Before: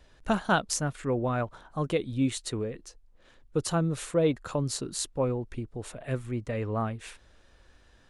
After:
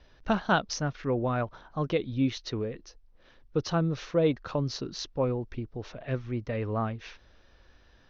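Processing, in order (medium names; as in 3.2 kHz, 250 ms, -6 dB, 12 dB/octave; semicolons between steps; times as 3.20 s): steep low-pass 6.1 kHz 96 dB/octave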